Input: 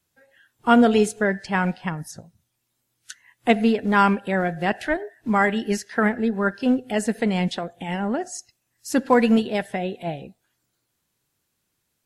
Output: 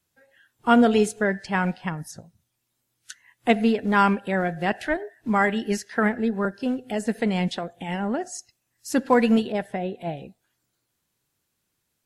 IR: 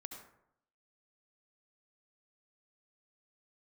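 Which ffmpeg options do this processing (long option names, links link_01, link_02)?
-filter_complex "[0:a]asettb=1/sr,asplit=3[link_01][link_02][link_03];[link_01]atrim=end=6.454[link_04];[link_02]atrim=start=6.45:end=7.07,asetpts=PTS-STARTPTS,afade=type=in:duration=0.004:curve=qsin,afade=type=out:start_time=0.616:duration=0.004:curve=qsin,acrossover=split=890|4700[link_05][link_06][link_07];[link_05]acompressor=threshold=-21dB:ratio=4[link_08];[link_06]acompressor=threshold=-36dB:ratio=4[link_09];[link_07]acompressor=threshold=-40dB:ratio=4[link_10];[link_08][link_09][link_10]amix=inputs=3:normalize=0[link_11];[link_03]atrim=start=7.066[link_12];[link_04][link_11]acrossfade=duration=0.004:curve1=hsin:curve2=qsin[link_13];[link_13][link_12]acrossfade=duration=0.004:curve1=qsin:curve2=hsin,asettb=1/sr,asplit=3[link_14][link_15][link_16];[link_14]atrim=end=9.524[link_17];[link_15]atrim=start=9.52:end=10.17,asetpts=PTS-STARTPTS,afade=type=in:duration=0.004:curve=qsin,afade=type=out:start_time=0.646:duration=0.004:curve=qsin,adynamicequalizer=threshold=0.00794:dfrequency=1700:dqfactor=0.7:tfrequency=1700:tqfactor=0.7:attack=5:release=100:ratio=0.375:range=3:mode=cutabove:tftype=highshelf[link_18];[link_16]atrim=start=10.166[link_19];[link_17][link_18]acrossfade=duration=0.004:curve1=hsin:curve2=qsin[link_20];[link_20][link_19]acrossfade=duration=0.004:curve1=qsin:curve2=hsin,volume=-1.5dB"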